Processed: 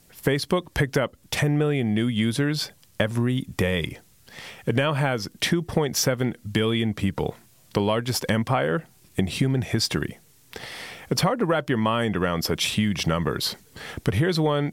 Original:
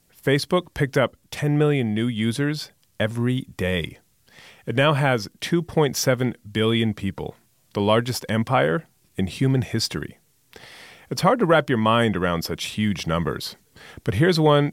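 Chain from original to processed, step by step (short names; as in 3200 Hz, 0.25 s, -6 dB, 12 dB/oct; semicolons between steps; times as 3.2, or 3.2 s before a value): compressor 12:1, threshold -25 dBFS, peak gain reduction 14 dB; gain +6.5 dB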